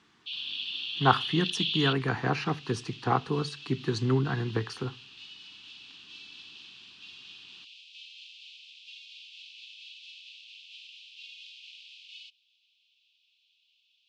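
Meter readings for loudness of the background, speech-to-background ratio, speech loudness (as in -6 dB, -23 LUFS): -39.0 LUFS, 9.5 dB, -29.5 LUFS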